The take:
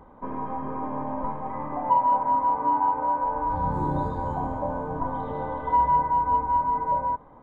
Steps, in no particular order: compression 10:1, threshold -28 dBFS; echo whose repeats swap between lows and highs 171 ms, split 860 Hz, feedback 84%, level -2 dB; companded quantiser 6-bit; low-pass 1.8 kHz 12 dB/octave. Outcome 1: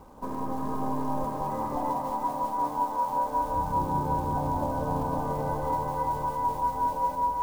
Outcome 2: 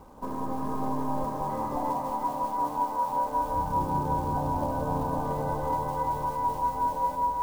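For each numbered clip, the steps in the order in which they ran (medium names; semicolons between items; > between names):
low-pass > companded quantiser > compression > echo whose repeats swap between lows and highs; compression > low-pass > companded quantiser > echo whose repeats swap between lows and highs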